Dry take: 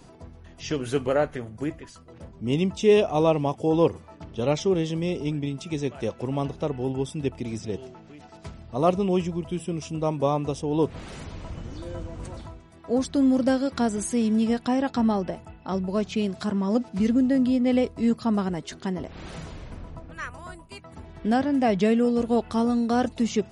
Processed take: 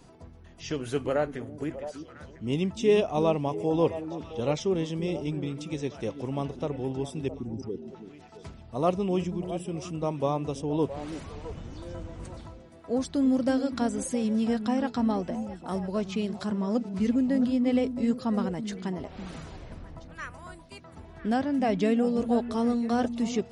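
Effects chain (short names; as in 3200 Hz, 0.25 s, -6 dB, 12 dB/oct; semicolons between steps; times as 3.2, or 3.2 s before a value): 7.28–7.88 formant sharpening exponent 3; delay with a stepping band-pass 0.333 s, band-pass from 240 Hz, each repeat 1.4 oct, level -7 dB; gain -4 dB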